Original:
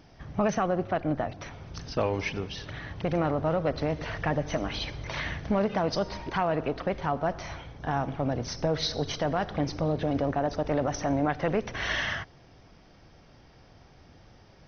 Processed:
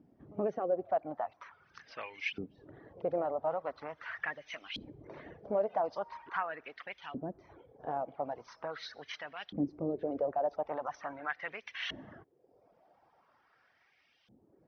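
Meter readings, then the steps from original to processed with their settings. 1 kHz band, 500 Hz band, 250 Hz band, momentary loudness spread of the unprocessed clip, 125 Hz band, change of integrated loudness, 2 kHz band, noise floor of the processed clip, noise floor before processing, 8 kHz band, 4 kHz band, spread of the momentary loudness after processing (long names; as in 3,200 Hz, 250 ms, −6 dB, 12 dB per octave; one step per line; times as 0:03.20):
−7.0 dB, −6.5 dB, −12.0 dB, 9 LU, −19.5 dB, −8.0 dB, −7.0 dB, −71 dBFS, −55 dBFS, can't be measured, −10.5 dB, 16 LU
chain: echo ahead of the sound 78 ms −22 dB
auto-filter band-pass saw up 0.42 Hz 240–3,000 Hz
reverb reduction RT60 0.8 s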